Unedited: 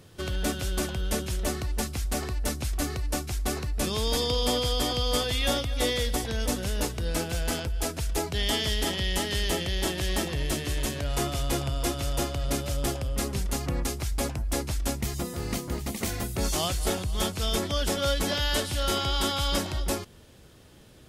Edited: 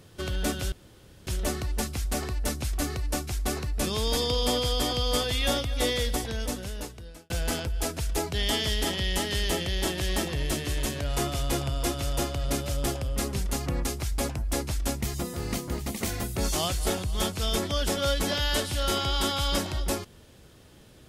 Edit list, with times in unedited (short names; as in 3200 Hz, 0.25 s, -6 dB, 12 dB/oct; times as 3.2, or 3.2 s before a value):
0.72–1.27 room tone
6.09–7.3 fade out